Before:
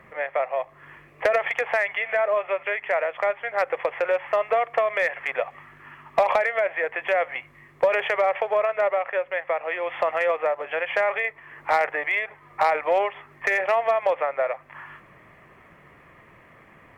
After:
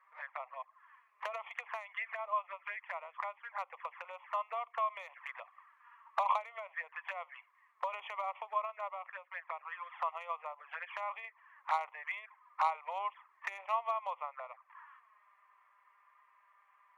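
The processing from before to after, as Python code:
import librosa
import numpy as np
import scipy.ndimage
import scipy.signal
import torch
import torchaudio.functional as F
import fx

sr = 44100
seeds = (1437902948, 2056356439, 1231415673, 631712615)

y = fx.env_flanger(x, sr, rest_ms=5.7, full_db=-21.0)
y = fx.ladder_highpass(y, sr, hz=960.0, resonance_pct=70)
y = fx.upward_expand(y, sr, threshold_db=-46.0, expansion=1.5)
y = y * librosa.db_to_amplitude(2.0)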